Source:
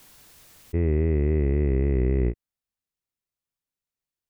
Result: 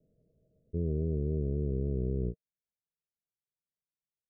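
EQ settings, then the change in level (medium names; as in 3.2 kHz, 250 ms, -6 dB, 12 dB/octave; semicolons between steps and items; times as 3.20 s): rippled Chebyshev low-pass 650 Hz, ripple 9 dB; -3.5 dB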